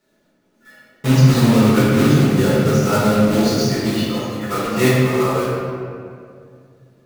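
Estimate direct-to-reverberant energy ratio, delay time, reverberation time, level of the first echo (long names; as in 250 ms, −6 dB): −8.5 dB, no echo audible, 2.3 s, no echo audible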